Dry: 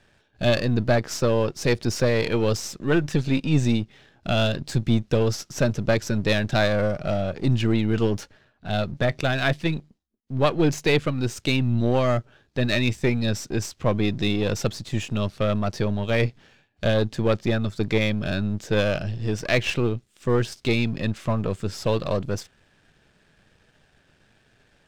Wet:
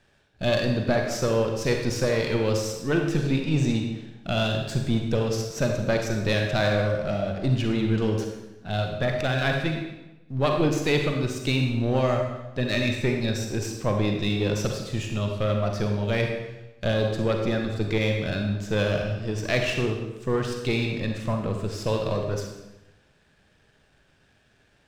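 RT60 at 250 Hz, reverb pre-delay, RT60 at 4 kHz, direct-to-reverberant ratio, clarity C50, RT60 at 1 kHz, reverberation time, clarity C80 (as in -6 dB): 1.1 s, 36 ms, 0.85 s, 2.5 dB, 3.5 dB, 1.0 s, 1.0 s, 5.5 dB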